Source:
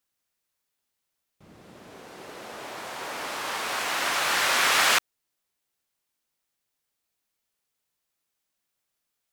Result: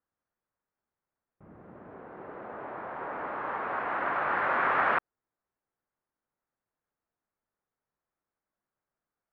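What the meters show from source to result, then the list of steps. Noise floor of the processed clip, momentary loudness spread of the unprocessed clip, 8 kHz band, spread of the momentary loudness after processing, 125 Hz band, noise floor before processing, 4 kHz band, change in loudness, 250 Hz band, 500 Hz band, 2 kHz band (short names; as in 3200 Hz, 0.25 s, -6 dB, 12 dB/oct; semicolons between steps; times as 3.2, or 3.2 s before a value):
under -85 dBFS, 20 LU, under -40 dB, 20 LU, 0.0 dB, -82 dBFS, -25.5 dB, -6.0 dB, 0.0 dB, 0.0 dB, -5.5 dB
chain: LPF 1600 Hz 24 dB/oct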